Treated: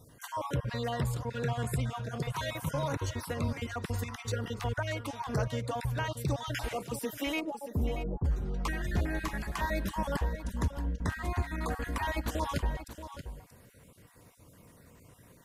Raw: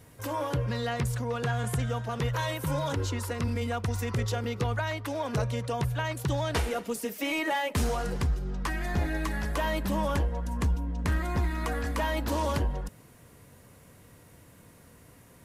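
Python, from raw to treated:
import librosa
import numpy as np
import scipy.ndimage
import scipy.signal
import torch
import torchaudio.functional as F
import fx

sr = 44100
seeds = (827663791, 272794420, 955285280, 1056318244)

y = fx.spec_dropout(x, sr, seeds[0], share_pct=32)
y = fx.gaussian_blur(y, sr, sigma=12.0, at=(7.39, 8.24), fade=0.02)
y = y + 10.0 ** (-11.5 / 20.0) * np.pad(y, (int(630 * sr / 1000.0), 0))[:len(y)]
y = y * librosa.db_to_amplitude(-2.0)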